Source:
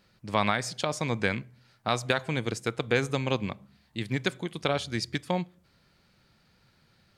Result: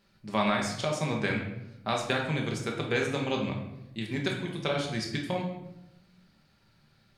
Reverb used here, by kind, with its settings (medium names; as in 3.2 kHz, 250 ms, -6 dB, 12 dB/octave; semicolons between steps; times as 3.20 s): simulated room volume 270 m³, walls mixed, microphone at 1.2 m; trim -4.5 dB